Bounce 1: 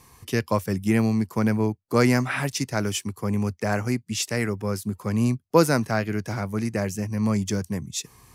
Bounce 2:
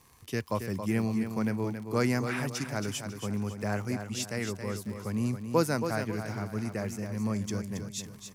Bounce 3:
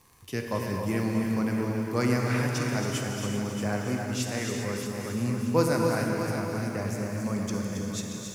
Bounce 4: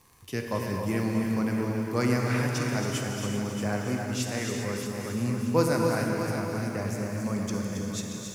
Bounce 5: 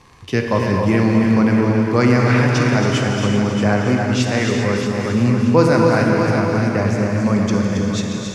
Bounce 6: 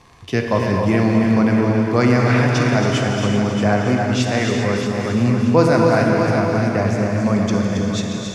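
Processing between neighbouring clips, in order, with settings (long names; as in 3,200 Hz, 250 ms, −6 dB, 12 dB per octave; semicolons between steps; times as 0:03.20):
surface crackle 51 per second −32 dBFS; on a send: repeating echo 274 ms, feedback 37%, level −8 dB; on the sum: level −8 dB
reverb whose tail is shaped and stops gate 430 ms flat, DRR 1 dB; feedback echo at a low word length 629 ms, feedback 35%, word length 9 bits, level −9 dB
no processing that can be heard
low-pass filter 4,500 Hz 12 dB per octave; in parallel at +2.5 dB: brickwall limiter −20 dBFS, peak gain reduction 9 dB; on the sum: level +6 dB
hollow resonant body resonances 680/3,500 Hz, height 8 dB; level −1 dB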